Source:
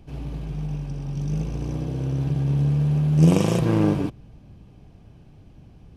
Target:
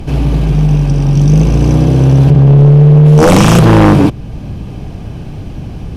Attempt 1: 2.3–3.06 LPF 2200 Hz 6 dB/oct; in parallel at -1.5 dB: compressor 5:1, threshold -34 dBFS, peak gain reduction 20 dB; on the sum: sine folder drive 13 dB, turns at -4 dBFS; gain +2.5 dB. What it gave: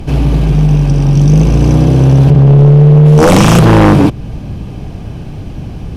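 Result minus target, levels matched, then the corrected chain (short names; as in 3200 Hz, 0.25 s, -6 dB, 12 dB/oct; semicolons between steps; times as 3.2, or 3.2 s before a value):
compressor: peak gain reduction -7 dB
2.3–3.06 LPF 2200 Hz 6 dB/oct; in parallel at -1.5 dB: compressor 5:1, threshold -42.5 dBFS, peak gain reduction 27 dB; on the sum: sine folder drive 13 dB, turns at -4 dBFS; gain +2.5 dB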